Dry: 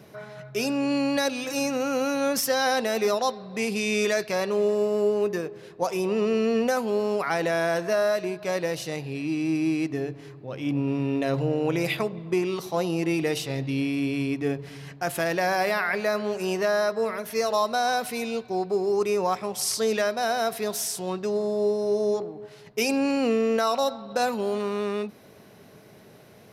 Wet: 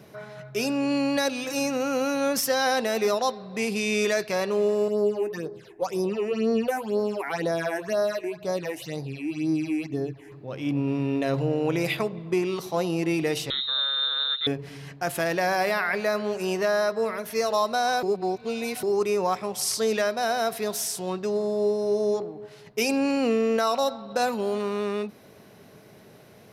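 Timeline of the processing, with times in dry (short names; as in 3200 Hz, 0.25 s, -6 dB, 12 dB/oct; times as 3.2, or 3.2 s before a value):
4.88–10.32 phaser stages 8, 2 Hz, lowest notch 150–2800 Hz
13.5–14.47 inverted band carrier 3900 Hz
18.03–18.83 reverse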